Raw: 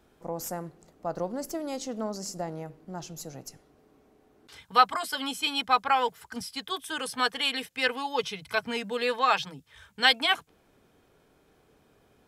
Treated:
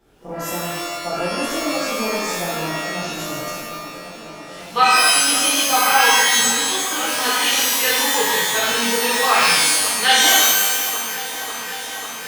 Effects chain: on a send: feedback echo behind a low-pass 546 ms, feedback 83%, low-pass 2.6 kHz, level -14 dB; on the sum: pitch-shifted reverb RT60 1.2 s, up +12 st, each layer -2 dB, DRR -9 dB; trim -1.5 dB

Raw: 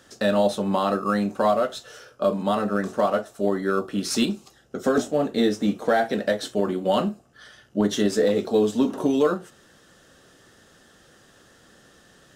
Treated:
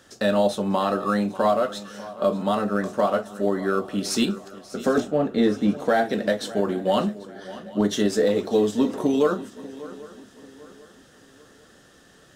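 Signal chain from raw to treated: 5.00–5.80 s: tone controls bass +3 dB, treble -10 dB; shuffle delay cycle 791 ms, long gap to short 3:1, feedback 36%, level -17.5 dB

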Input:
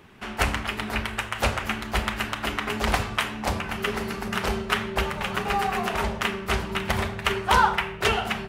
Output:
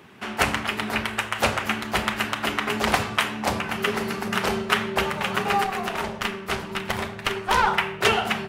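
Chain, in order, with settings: high-pass 120 Hz 12 dB/octave; 5.64–7.67 s: valve stage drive 15 dB, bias 0.75; trim +3 dB

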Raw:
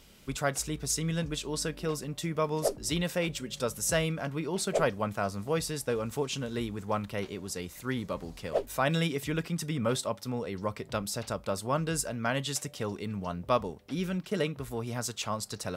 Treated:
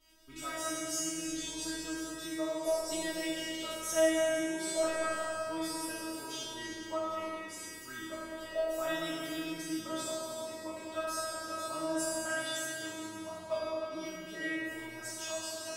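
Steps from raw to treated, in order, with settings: spectral sustain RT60 1.19 s; feedback comb 320 Hz, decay 0.6 s, mix 100%; delay with an opening low-pass 102 ms, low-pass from 750 Hz, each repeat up 2 oct, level -3 dB; trim +8.5 dB

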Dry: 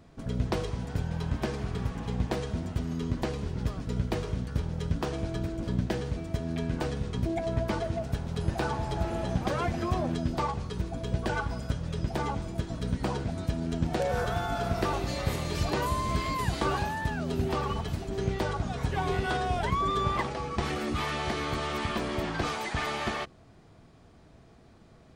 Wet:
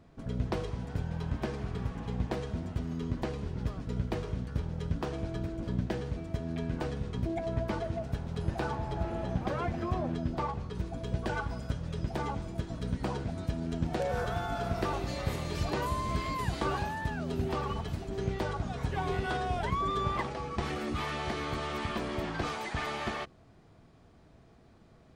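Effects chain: treble shelf 4.2 kHz -6.5 dB, from 8.75 s -11.5 dB, from 10.75 s -3.5 dB; trim -3 dB

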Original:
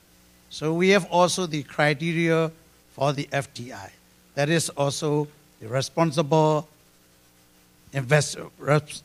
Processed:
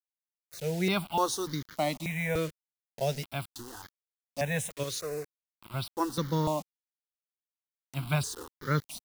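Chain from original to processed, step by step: 4.83–5.74 s: bass shelf 360 Hz -10.5 dB; word length cut 6-bit, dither none; stepped phaser 3.4 Hz 210–2600 Hz; trim -5 dB

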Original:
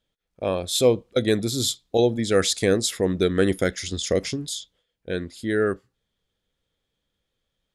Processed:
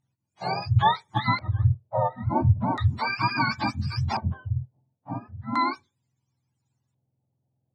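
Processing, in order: spectrum inverted on a logarithmic axis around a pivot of 660 Hz; LFO low-pass square 0.36 Hz 600–7300 Hz; trim -1.5 dB

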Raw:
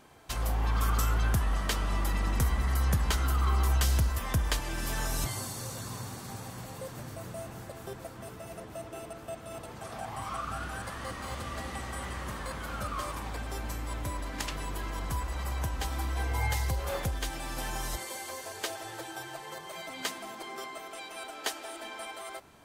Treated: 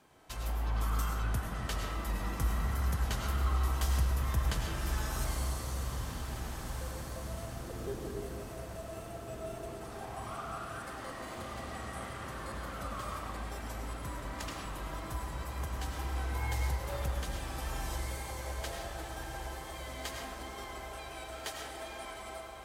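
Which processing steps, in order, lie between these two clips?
7.62–8.22 s: resonant low shelf 540 Hz +6.5 dB, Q 3; 10.57–11.38 s: steep high-pass 190 Hz 96 dB/octave; in parallel at -11 dB: saturation -32.5 dBFS, distortion -7 dB; 13.12–13.64 s: on the sum: crackle 200 per s -47 dBFS; wow and flutter 47 cents; on a send: echo that smears into a reverb 1647 ms, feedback 48%, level -7 dB; on the sum: algorithmic reverb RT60 1.7 s, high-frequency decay 0.3×, pre-delay 65 ms, DRR 0.5 dB; trim -9 dB

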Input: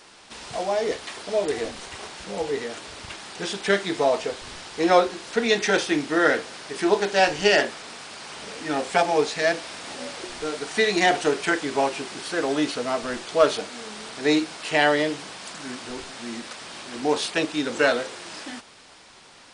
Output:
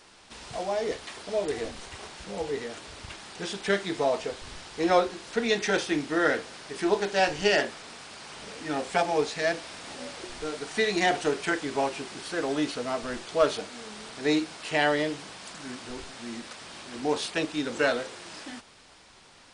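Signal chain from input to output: bass shelf 110 Hz +8.5 dB; trim -5 dB

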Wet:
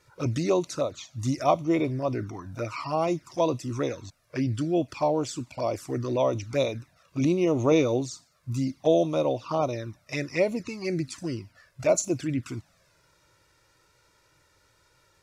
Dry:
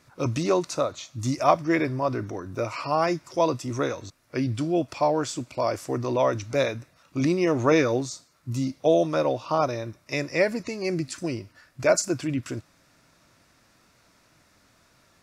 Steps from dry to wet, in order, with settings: touch-sensitive flanger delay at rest 2.2 ms, full sweep at -20.5 dBFS

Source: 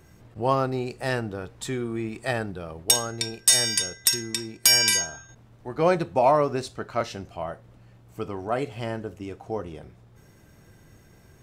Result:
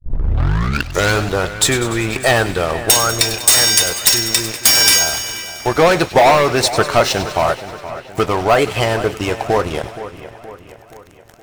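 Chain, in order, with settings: tape start-up on the opening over 1.33 s; peaking EQ 230 Hz -11.5 dB 1.2 oct; in parallel at -1.5 dB: compression 5:1, threshold -36 dBFS, peak gain reduction 20 dB; on the sum: waveshaping leveller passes 5; feedback echo behind a high-pass 97 ms, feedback 79%, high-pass 2 kHz, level -14 dB; harmonic-percussive split percussive +7 dB; on a send: two-band feedback delay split 2.8 kHz, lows 472 ms, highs 101 ms, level -13.5 dB; on the sum: trim -5.5 dB

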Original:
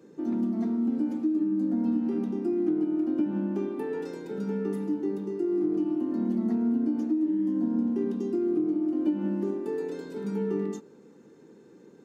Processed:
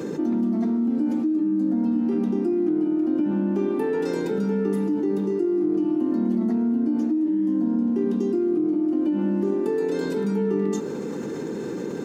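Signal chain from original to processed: level flattener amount 70%; trim +1 dB

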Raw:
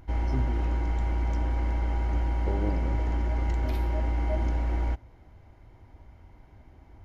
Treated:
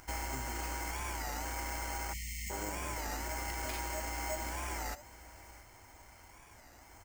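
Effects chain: careless resampling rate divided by 6×, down filtered, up hold; bass shelf 400 Hz -10 dB; compression, threshold -37 dBFS, peak gain reduction 8 dB; tilt shelf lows -6 dB, about 820 Hz; delay 664 ms -17.5 dB; spectral selection erased 2.13–2.50 s, 240–1800 Hz; warped record 33 1/3 rpm, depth 160 cents; trim +5 dB

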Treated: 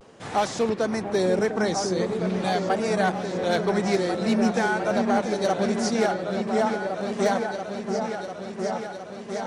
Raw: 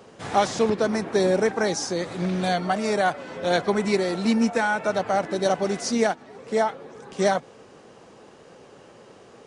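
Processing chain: one-sided clip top -13.5 dBFS, bottom -13 dBFS; delay with an opening low-pass 698 ms, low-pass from 400 Hz, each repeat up 2 oct, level -3 dB; vibrato 0.44 Hz 39 cents; trim -2 dB

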